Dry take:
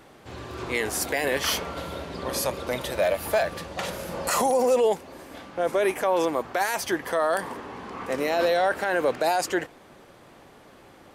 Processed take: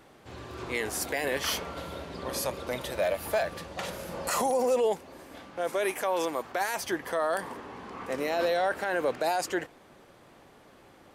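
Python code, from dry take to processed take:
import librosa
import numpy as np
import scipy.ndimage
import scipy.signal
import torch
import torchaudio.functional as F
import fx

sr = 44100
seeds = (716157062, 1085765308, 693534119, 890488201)

y = fx.tilt_eq(x, sr, slope=1.5, at=(5.57, 6.52))
y = F.gain(torch.from_numpy(y), -4.5).numpy()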